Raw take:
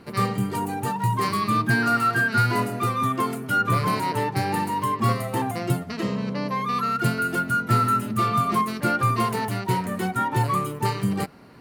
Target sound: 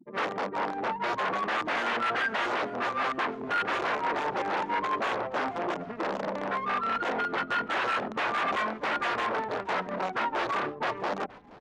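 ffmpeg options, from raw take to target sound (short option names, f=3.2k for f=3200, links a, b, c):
-filter_complex "[0:a]afftfilt=real='re*gte(hypot(re,im),0.02)':imag='im*gte(hypot(re,im),0.02)':win_size=1024:overlap=0.75,tiltshelf=f=790:g=5.5,aresample=8000,aeval=exprs='(mod(6.68*val(0)+1,2)-1)/6.68':c=same,aresample=44100,acrossover=split=1700[a][b];[a]aeval=exprs='val(0)*(1-0.7/2+0.7/2*cos(2*PI*4.6*n/s))':c=same[c];[b]aeval=exprs='val(0)*(1-0.7/2-0.7/2*cos(2*PI*4.6*n/s))':c=same[d];[c][d]amix=inputs=2:normalize=0,adynamicsmooth=sensitivity=4.5:basefreq=1.1k,aeval=exprs='0.0531*(abs(mod(val(0)/0.0531+3,4)-2)-1)':c=same,highpass=430,lowpass=2.4k,asplit=2[e][f];[f]asplit=3[g][h][i];[g]adelay=474,afreqshift=-150,volume=-21dB[j];[h]adelay=948,afreqshift=-300,volume=-29dB[k];[i]adelay=1422,afreqshift=-450,volume=-36.9dB[l];[j][k][l]amix=inputs=3:normalize=0[m];[e][m]amix=inputs=2:normalize=0,volume=4.5dB"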